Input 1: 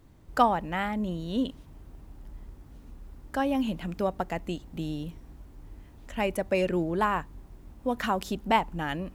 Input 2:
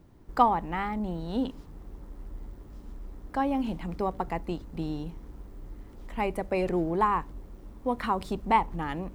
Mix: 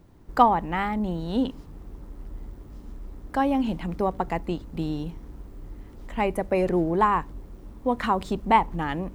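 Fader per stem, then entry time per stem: -8.0, +2.0 dB; 0.00, 0.00 s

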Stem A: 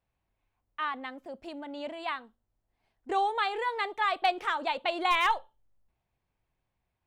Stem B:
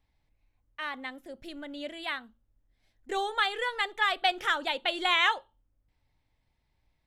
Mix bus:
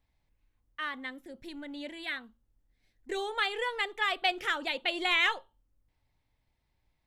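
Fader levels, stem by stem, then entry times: -8.5, -2.0 dB; 0.00, 0.00 s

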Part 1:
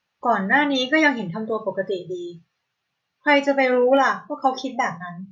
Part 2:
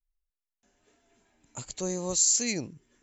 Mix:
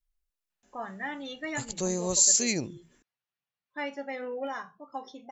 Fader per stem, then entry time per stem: -18.0, +2.0 dB; 0.50, 0.00 s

